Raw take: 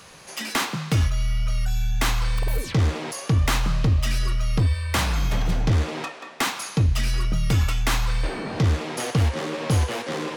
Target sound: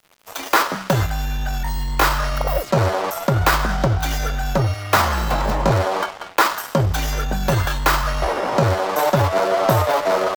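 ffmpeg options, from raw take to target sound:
-af "firequalizer=gain_entry='entry(190,0);entry(480,14);entry(890,13);entry(2000,1);entry(4200,3);entry(7800,-2);entry(13000,12)':delay=0.05:min_phase=1,asetrate=53981,aresample=44100,atempo=0.816958,aeval=exprs='sgn(val(0))*max(abs(val(0))-0.0237,0)':c=same,volume=1.19"

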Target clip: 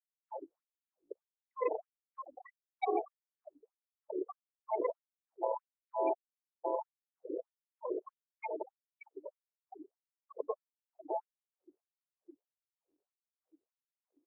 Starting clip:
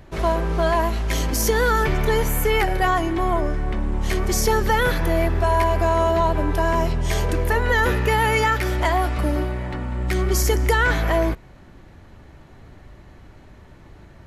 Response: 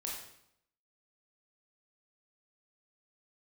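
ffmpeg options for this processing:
-filter_complex "[0:a]acrossover=split=3700[s0][s1];[s0]asoftclip=type=hard:threshold=0.112[s2];[s2][s1]amix=inputs=2:normalize=0,acrusher=samples=29:mix=1:aa=0.000001,bass=f=250:g=6,treble=f=4000:g=-1,asoftclip=type=tanh:threshold=0.0794,aecho=1:1:91:0.2,acrusher=bits=5:mode=log:mix=0:aa=0.000001,acompressor=threshold=0.0158:ratio=6,asettb=1/sr,asplit=3[s3][s4][s5];[s3]atrim=end=6.134[s6];[s4]atrim=start=6.13:end=6.65,asetpts=PTS-STARTPTS,afade=t=in:d=0.004:c=qsin,afade=t=out:st=0.516:d=0.004:c=qsin,aderivative[s7];[s5]atrim=start=6.646[s8];[s6][s7]acrossfade=d=0.004:c1=hsin:c2=qsin[s9];[s9][s8]acrossfade=d=0.004:c1=qsin:c2=hsin,afftfilt=real='re*gte(hypot(re,im),0.0282)':imag='im*gte(hypot(re,im),0.0282)':win_size=1024:overlap=0.75,afftfilt=real='re*gte(b*sr/1024,290*pow(7400/290,0.5+0.5*sin(2*PI*1.6*pts/sr)))':imag='im*gte(b*sr/1024,290*pow(7400/290,0.5+0.5*sin(2*PI*1.6*pts/sr)))':win_size=1024:overlap=0.75,volume=3.35"

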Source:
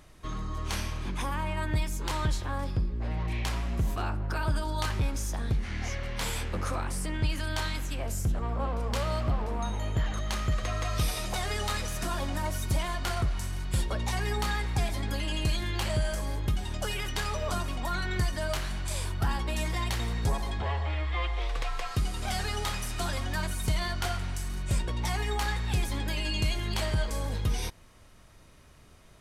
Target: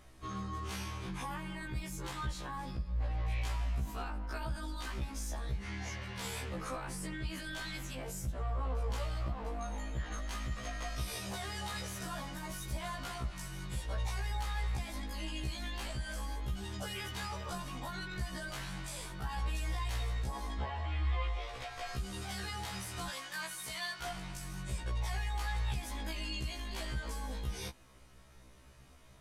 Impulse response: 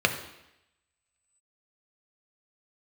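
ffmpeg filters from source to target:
-filter_complex "[0:a]asettb=1/sr,asplit=3[s0][s1][s2];[s0]atrim=end=23.084[s3];[s1]atrim=start=23.08:end=24.02,asetpts=PTS-STARTPTS,afade=t=in:d=0.004:c=qsin,afade=t=out:st=0.936:d=0.004:c=qsin,highpass=f=1100:p=1[s4];[s2]atrim=start=24.016[s5];[s3][s4]acrossfade=d=0.004:c1=hsin:c2=qsin[s6];[s6][s5]acrossfade=d=0.004:c1=qsin:c2=hsin,alimiter=level_in=1.33:limit=0.0631:level=0:latency=1:release=26,volume=0.75,afftfilt=real='re*1.73*eq(mod(b,3),0)':imag='im*1.73*eq(mod(b,3),0)':win_size=2048:overlap=0.75,volume=0.891"

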